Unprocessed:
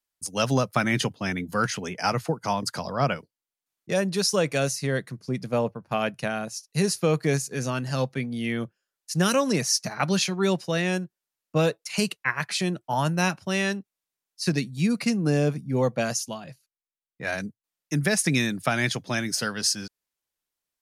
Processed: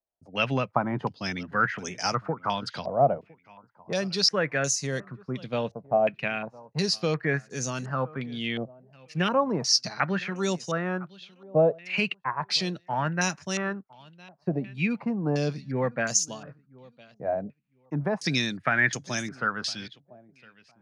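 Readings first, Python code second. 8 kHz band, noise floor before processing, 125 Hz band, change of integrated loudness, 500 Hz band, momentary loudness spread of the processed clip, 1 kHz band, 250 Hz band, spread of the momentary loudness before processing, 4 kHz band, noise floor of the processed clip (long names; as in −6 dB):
−2.0 dB, below −85 dBFS, −4.5 dB, −1.5 dB, −1.0 dB, 11 LU, 0.0 dB, −4.0 dB, 8 LU, +0.5 dB, −66 dBFS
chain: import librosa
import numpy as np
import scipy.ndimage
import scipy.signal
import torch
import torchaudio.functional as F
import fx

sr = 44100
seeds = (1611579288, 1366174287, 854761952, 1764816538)

y = fx.echo_feedback(x, sr, ms=1009, feedback_pct=18, wet_db=-23)
y = fx.filter_held_lowpass(y, sr, hz=2.8, low_hz=680.0, high_hz=6600.0)
y = y * librosa.db_to_amplitude(-4.5)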